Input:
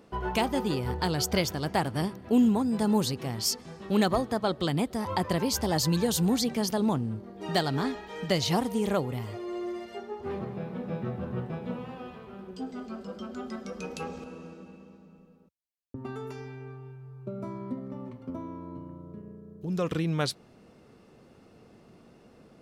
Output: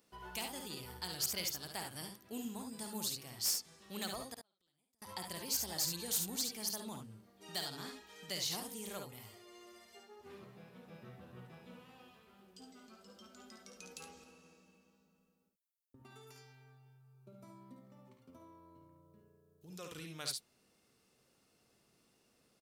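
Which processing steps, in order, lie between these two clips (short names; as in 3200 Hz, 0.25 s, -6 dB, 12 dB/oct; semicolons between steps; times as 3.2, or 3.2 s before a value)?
4.34–5.02 flipped gate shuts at -28 dBFS, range -38 dB; pre-emphasis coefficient 0.9; hard clip -26.5 dBFS, distortion -14 dB; on a send: early reflections 55 ms -7.5 dB, 70 ms -7 dB; on the sum: gain -2.5 dB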